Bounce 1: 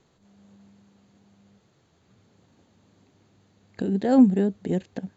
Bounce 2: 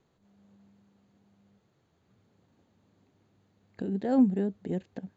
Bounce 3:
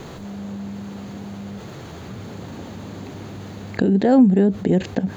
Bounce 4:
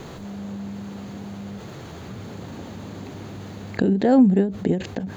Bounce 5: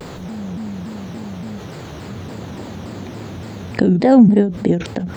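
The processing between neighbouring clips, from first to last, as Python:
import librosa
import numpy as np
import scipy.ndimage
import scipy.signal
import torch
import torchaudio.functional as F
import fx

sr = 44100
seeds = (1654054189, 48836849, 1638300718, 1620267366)

y1 = fx.high_shelf(x, sr, hz=3700.0, db=-7.0)
y1 = F.gain(torch.from_numpy(y1), -6.5).numpy()
y2 = fx.env_flatten(y1, sr, amount_pct=50)
y2 = F.gain(torch.from_numpy(y2), 8.0).numpy()
y3 = fx.end_taper(y2, sr, db_per_s=130.0)
y3 = F.gain(torch.from_numpy(y3), -1.5).numpy()
y4 = fx.vibrato_shape(y3, sr, shape='saw_down', rate_hz=3.5, depth_cents=250.0)
y4 = F.gain(torch.from_numpy(y4), 5.5).numpy()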